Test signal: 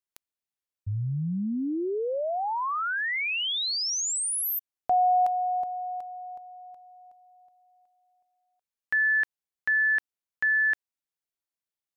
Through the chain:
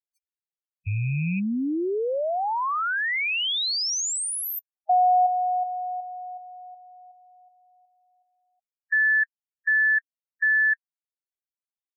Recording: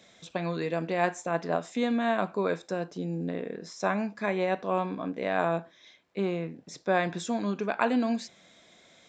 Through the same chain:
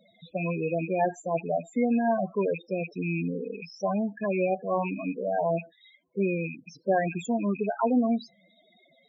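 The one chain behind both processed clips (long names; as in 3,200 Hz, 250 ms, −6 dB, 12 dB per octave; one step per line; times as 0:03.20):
loose part that buzzes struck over −42 dBFS, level −22 dBFS
spectral peaks only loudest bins 8
level +3 dB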